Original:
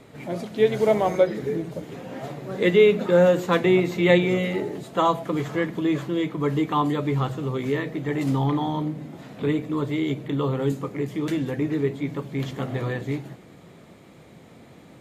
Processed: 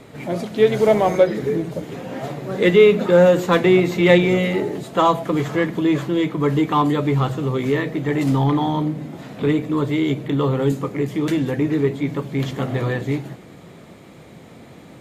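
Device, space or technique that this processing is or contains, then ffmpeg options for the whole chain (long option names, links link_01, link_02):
parallel distortion: -filter_complex "[0:a]asplit=2[link_01][link_02];[link_02]asoftclip=type=hard:threshold=-23dB,volume=-11dB[link_03];[link_01][link_03]amix=inputs=2:normalize=0,volume=3.5dB"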